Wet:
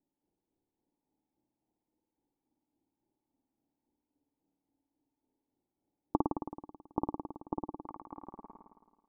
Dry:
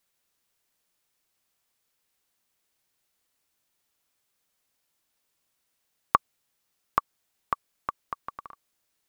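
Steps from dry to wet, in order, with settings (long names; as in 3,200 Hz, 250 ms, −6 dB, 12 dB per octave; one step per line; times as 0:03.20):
two-band tremolo in antiphase 3.6 Hz, depth 100%, crossover 990 Hz
formant resonators in series u
flutter between parallel walls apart 9.3 metres, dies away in 1.4 s
level +15 dB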